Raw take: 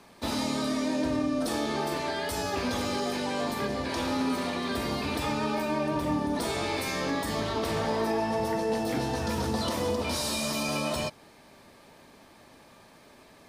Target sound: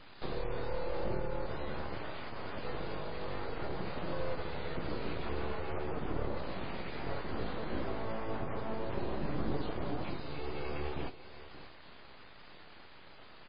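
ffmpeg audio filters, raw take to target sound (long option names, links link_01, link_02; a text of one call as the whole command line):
ffmpeg -i in.wav -filter_complex "[0:a]asplit=3[link_01][link_02][link_03];[link_01]afade=type=out:start_time=2.03:duration=0.02[link_04];[link_02]highpass=120,afade=type=in:start_time=2.03:duration=0.02,afade=type=out:start_time=3.26:duration=0.02[link_05];[link_03]afade=type=in:start_time=3.26:duration=0.02[link_06];[link_04][link_05][link_06]amix=inputs=3:normalize=0,acrossover=split=250[link_07][link_08];[link_08]acompressor=threshold=-44dB:ratio=5[link_09];[link_07][link_09]amix=inputs=2:normalize=0,bandreject=frequency=60:width_type=h:width=6,bandreject=frequency=120:width_type=h:width=6,bandreject=frequency=180:width_type=h:width=6,bandreject=frequency=240:width_type=h:width=6,bandreject=frequency=300:width_type=h:width=6,bandreject=frequency=360:width_type=h:width=6,aecho=1:1:583:0.178,aeval=exprs='abs(val(0))':channel_layout=same,acrossover=split=2900[link_10][link_11];[link_11]acompressor=threshold=-56dB:ratio=4:attack=1:release=60[link_12];[link_10][link_12]amix=inputs=2:normalize=0,volume=3dB" -ar 11025 -c:a libmp3lame -b:a 16k out.mp3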